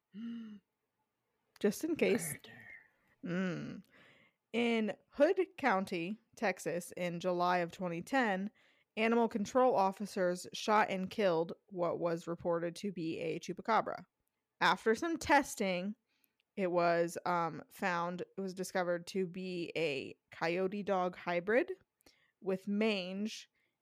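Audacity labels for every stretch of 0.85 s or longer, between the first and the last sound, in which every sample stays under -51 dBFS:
0.570000	1.560000	silence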